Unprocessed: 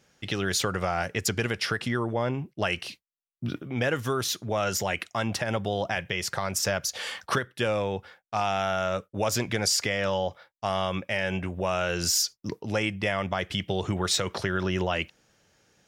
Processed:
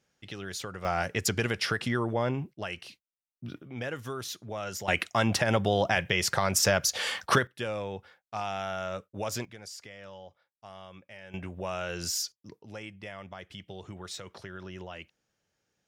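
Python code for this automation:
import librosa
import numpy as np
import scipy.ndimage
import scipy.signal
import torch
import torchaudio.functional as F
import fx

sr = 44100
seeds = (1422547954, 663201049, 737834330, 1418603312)

y = fx.gain(x, sr, db=fx.steps((0.0, -11.0), (0.85, -1.0), (2.55, -9.0), (4.88, 3.0), (7.47, -7.0), (9.45, -19.5), (11.34, -7.0), (12.32, -15.0)))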